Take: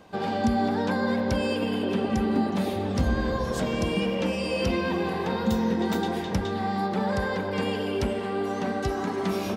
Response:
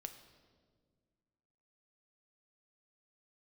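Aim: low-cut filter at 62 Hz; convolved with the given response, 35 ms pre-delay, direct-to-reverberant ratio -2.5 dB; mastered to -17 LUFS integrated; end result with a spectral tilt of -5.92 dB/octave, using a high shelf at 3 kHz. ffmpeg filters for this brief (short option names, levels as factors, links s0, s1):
-filter_complex "[0:a]highpass=62,highshelf=f=3000:g=-7.5,asplit=2[s0][s1];[1:a]atrim=start_sample=2205,adelay=35[s2];[s1][s2]afir=irnorm=-1:irlink=0,volume=2.11[s3];[s0][s3]amix=inputs=2:normalize=0,volume=2"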